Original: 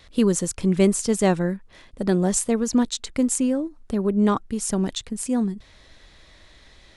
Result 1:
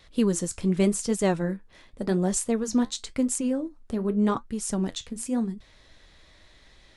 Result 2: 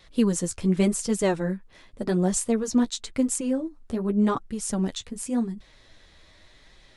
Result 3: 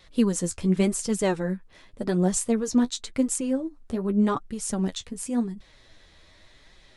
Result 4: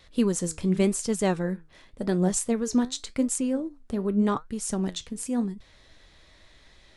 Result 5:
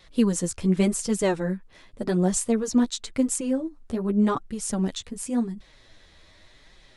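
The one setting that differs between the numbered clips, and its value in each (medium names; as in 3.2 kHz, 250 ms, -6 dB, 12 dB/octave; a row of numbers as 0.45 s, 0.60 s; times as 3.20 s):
flange, regen: -66%, -19%, +28%, +74%, +3%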